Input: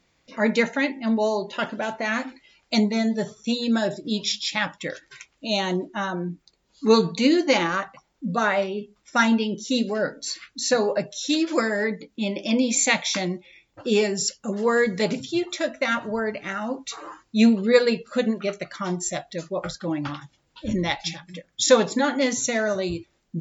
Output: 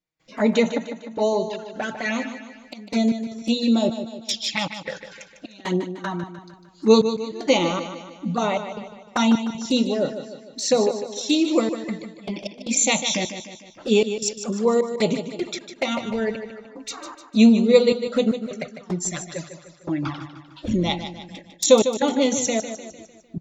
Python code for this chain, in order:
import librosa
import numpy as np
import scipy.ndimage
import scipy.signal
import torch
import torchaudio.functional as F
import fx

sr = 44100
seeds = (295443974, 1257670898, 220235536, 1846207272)

y = fx.step_gate(x, sr, bpm=77, pattern='.xxx..xx.xxx.x.x', floor_db=-24.0, edge_ms=4.5)
y = fx.env_flanger(y, sr, rest_ms=6.4, full_db=-21.0)
y = fx.echo_feedback(y, sr, ms=151, feedback_pct=49, wet_db=-10.0)
y = y * 10.0 ** (3.5 / 20.0)